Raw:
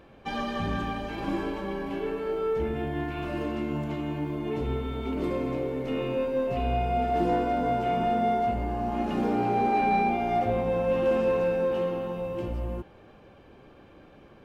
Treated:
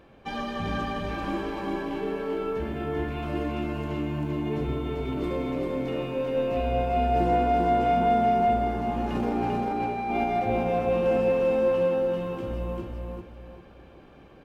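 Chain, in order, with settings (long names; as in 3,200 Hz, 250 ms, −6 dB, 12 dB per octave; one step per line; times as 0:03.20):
0:09.15–0:10.24: compressor whose output falls as the input rises −27 dBFS, ratio −0.5
on a send: repeating echo 393 ms, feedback 32%, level −3 dB
on the sum: level −1 dB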